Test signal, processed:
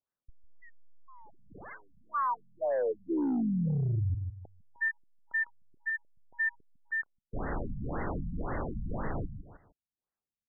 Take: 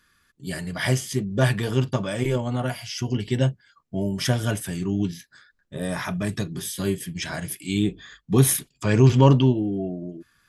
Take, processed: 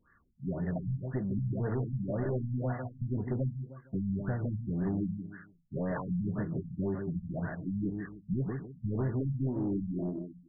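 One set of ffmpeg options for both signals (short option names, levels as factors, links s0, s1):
-af "acompressor=threshold=0.0562:ratio=8,aecho=1:1:153|306|459:0.398|0.107|0.029,aeval=exprs='0.224*(cos(1*acos(clip(val(0)/0.224,-1,1)))-cos(1*PI/2))+0.0631*(cos(2*acos(clip(val(0)/0.224,-1,1)))-cos(2*PI/2))+0.0112*(cos(4*acos(clip(val(0)/0.224,-1,1)))-cos(4*PI/2))+0.00141*(cos(6*acos(clip(val(0)/0.224,-1,1)))-cos(6*PI/2))':c=same,aresample=8000,asoftclip=type=tanh:threshold=0.0562,aresample=44100,afftfilt=real='re*lt(b*sr/1024,220*pow(2100/220,0.5+0.5*sin(2*PI*1.9*pts/sr)))':imag='im*lt(b*sr/1024,220*pow(2100/220,0.5+0.5*sin(2*PI*1.9*pts/sr)))':win_size=1024:overlap=0.75"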